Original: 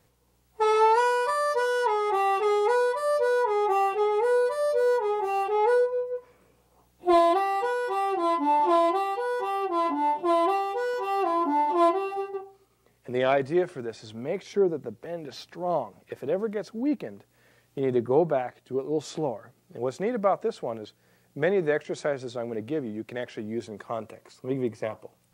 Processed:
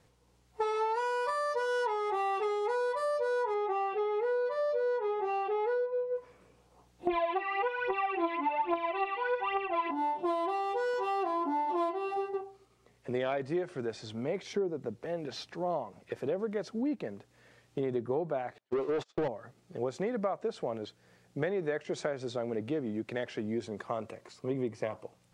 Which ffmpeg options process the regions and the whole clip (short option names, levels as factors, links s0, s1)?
-filter_complex "[0:a]asettb=1/sr,asplit=3[s0][s1][s2];[s0]atrim=end=3.544[s3];[s1]atrim=start=3.54:end=6.16,asetpts=PTS-STARTPTS,afade=t=in:d=0.004:c=qsin,afade=t=out:st=2.616:d=0.004:c=qsin,highpass=100,lowpass=4000,bandreject=f=900:w=7.5[s4];[s2]atrim=start=6.156[s5];[s3][s4]acrossfade=d=0.004:c1=hsin:c2=qsin[s6];[s6][s5]acrossfade=d=0.004:c1=qsin:c2=hsin,asettb=1/sr,asplit=3[s7][s8][s9];[s7]atrim=end=7.074[s10];[s8]atrim=start=7.07:end=9.91,asetpts=PTS-STARTPTS,afade=t=in:d=0.004:c=qsin,afade=t=out:st=2.836:d=0.004:c=qsin,aphaser=in_gain=1:out_gain=1:delay=3.6:decay=0.69:speed=1.2:type=triangular,lowpass=f=2500:t=q:w=4.6[s11];[s9]atrim=start=9.906[s12];[s10][s11]acrossfade=d=0.004:c1=hsin:c2=qsin[s13];[s13][s12]acrossfade=d=0.004:c1=qsin:c2=hsin,asettb=1/sr,asplit=3[s14][s15][s16];[s14]atrim=end=18.584[s17];[s15]atrim=start=18.58:end=19.28,asetpts=PTS-STARTPTS,afade=t=in:d=0.004:c=qsin,afade=t=out:st=0.696:d=0.004:c=qsin,aeval=exprs='val(0)+0.5*0.00668*sgn(val(0))':c=same,agate=range=0.00282:threshold=0.02:ratio=16:release=100:detection=peak,asplit=2[s18][s19];[s19]highpass=f=720:p=1,volume=14.1,asoftclip=type=tanh:threshold=0.158[s20];[s18][s20]amix=inputs=2:normalize=0,lowpass=f=2000:p=1,volume=0.501[s21];[s16]atrim=start=19.276[s22];[s17][s21]acrossfade=d=0.004:c1=hsin:c2=qsin[s23];[s23][s22]acrossfade=d=0.004:c1=qsin:c2=hsin,lowpass=8100,acompressor=threshold=0.0355:ratio=6"